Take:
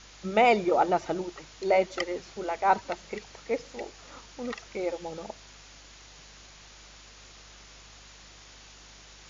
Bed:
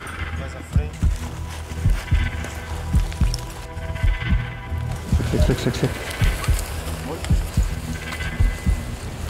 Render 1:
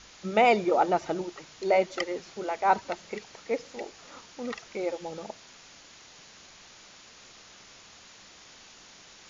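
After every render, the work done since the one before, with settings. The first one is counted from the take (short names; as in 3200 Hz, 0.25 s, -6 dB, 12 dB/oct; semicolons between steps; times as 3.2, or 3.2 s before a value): de-hum 50 Hz, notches 3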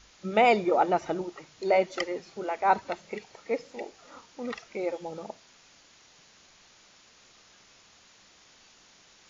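noise print and reduce 6 dB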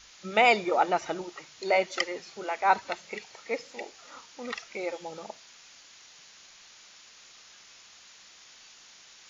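tilt shelf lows -6 dB, about 850 Hz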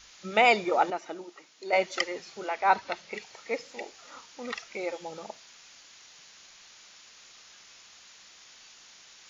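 0.9–1.73 ladder high-pass 200 Hz, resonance 35%; 2.48–3.14 LPF 6100 Hz 24 dB/oct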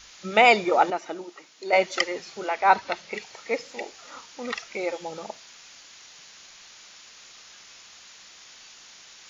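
gain +4.5 dB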